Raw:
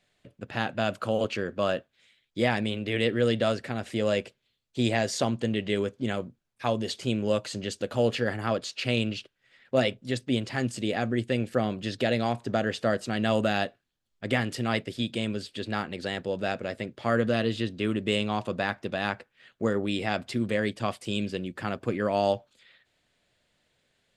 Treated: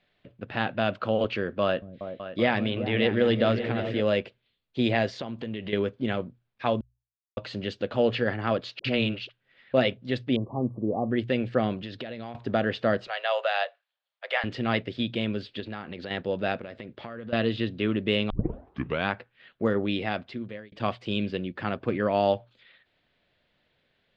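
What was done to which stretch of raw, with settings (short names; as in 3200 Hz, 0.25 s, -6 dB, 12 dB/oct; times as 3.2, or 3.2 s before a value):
1.63–4 repeats that get brighter 0.189 s, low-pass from 200 Hz, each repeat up 2 oct, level -6 dB
5.07–5.73 compressor, threshold -31 dBFS
6.81–7.37 mute
8.79–9.74 dispersion highs, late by 55 ms, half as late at 530 Hz
10.36–11.11 brick-wall FIR band-stop 1200–9400 Hz
11.77–12.35 compressor 16:1, threshold -33 dBFS
13.07–14.44 steep high-pass 530 Hz 48 dB/oct
15.6–16.11 compressor 3:1, threshold -35 dBFS
16.61–17.33 compressor 8:1, threshold -36 dBFS
18.3 tape start 0.79 s
19.9–20.72 fade out
whole clip: LPF 4000 Hz 24 dB/oct; notches 60/120 Hz; gain +1.5 dB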